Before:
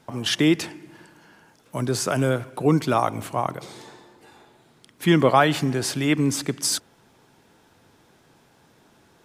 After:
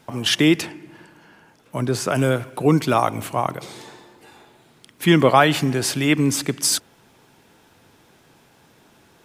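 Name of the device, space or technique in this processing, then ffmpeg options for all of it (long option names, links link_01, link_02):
presence and air boost: -filter_complex "[0:a]equalizer=frequency=2600:width_type=o:width=0.77:gain=3,highshelf=frequency=12000:gain=6.5,asettb=1/sr,asplit=3[link_01][link_02][link_03];[link_01]atrim=end=0.614[link_04];[link_02]atrim=start=0.61:end=2.15,asetpts=PTS-STARTPTS,afade=type=in:duration=0.004:curve=qsin,afade=type=out:start_time=1.536:duration=0.004:curve=qsin,highshelf=frequency=3800:gain=-7[link_05];[link_03]atrim=start=2.146[link_06];[link_04][link_05]acrossfade=duration=0.004:curve1=hsin:curve2=qsin[link_07];[link_07][link_06]acrossfade=duration=0.004:curve1=qsin:curve2=hsin,volume=2.5dB"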